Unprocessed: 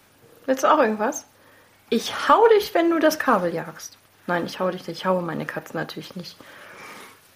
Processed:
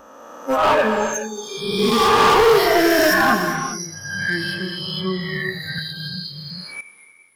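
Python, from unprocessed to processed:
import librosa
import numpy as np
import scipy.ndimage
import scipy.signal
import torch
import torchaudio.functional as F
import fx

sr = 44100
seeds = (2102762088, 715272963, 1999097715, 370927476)

y = fx.spec_swells(x, sr, rise_s=2.96)
y = fx.lowpass(y, sr, hz=fx.line((0.56, 2300.0), (1.13, 4000.0)), slope=6, at=(0.56, 1.13), fade=0.02)
y = fx.noise_reduce_blind(y, sr, reduce_db=26)
y = np.clip(10.0 ** (15.5 / 20.0) * y, -1.0, 1.0) / 10.0 ** (15.5 / 20.0)
y = fx.rev_gated(y, sr, seeds[0], gate_ms=440, shape='flat', drr_db=4.5)
y = fx.band_squash(y, sr, depth_pct=100, at=(5.78, 6.81))
y = y * librosa.db_to_amplitude(2.5)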